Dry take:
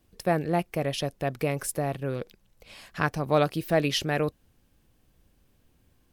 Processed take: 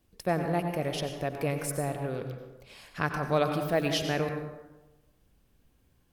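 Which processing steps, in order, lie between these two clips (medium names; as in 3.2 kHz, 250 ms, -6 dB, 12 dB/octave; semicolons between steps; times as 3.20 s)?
plate-style reverb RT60 1.1 s, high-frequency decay 0.5×, pre-delay 80 ms, DRR 5 dB; trim -3.5 dB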